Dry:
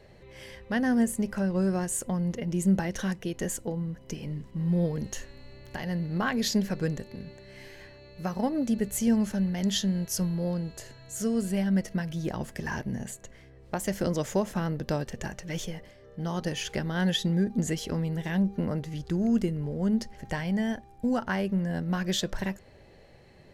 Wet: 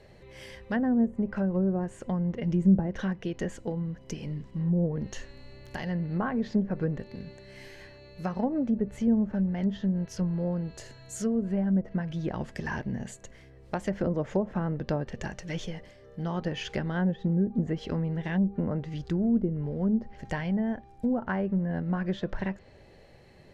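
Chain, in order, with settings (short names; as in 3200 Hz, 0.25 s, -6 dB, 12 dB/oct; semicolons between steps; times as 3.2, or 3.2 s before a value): treble ducked by the level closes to 670 Hz, closed at -22 dBFS; 2.43–2.87 tone controls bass +4 dB, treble +5 dB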